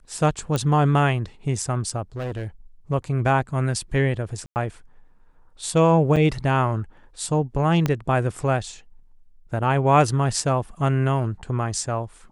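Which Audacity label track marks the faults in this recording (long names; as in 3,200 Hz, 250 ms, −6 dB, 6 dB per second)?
0.560000	0.560000	click −11 dBFS
2.160000	2.470000	clipping −25 dBFS
4.460000	4.560000	drop-out 99 ms
6.160000	6.170000	drop-out 6.2 ms
7.860000	7.860000	click −9 dBFS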